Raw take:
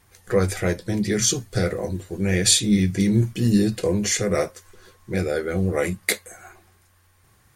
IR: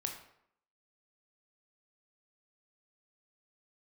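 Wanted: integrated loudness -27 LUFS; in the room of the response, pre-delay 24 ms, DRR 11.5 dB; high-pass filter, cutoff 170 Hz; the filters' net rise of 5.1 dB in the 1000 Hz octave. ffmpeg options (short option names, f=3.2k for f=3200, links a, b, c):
-filter_complex "[0:a]highpass=170,equalizer=f=1k:t=o:g=7.5,asplit=2[a][b];[1:a]atrim=start_sample=2205,adelay=24[c];[b][c]afir=irnorm=-1:irlink=0,volume=-12dB[d];[a][d]amix=inputs=2:normalize=0,volume=-5dB"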